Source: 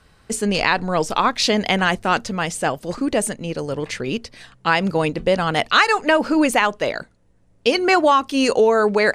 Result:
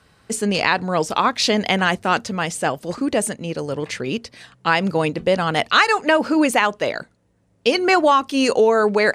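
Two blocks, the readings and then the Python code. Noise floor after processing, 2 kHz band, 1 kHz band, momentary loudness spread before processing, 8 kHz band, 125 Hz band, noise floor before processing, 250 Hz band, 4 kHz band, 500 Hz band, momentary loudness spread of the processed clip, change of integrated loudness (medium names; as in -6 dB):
-62 dBFS, 0.0 dB, 0.0 dB, 10 LU, 0.0 dB, 0.0 dB, -56 dBFS, 0.0 dB, 0.0 dB, 0.0 dB, 10 LU, 0.0 dB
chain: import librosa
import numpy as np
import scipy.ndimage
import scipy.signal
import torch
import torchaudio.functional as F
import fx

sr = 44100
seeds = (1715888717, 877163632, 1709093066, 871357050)

y = scipy.signal.sosfilt(scipy.signal.butter(2, 77.0, 'highpass', fs=sr, output='sos'), x)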